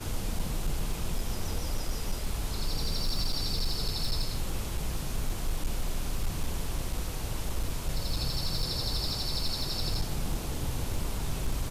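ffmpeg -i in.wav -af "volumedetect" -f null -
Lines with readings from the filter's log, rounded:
mean_volume: -29.4 dB
max_volume: -22.7 dB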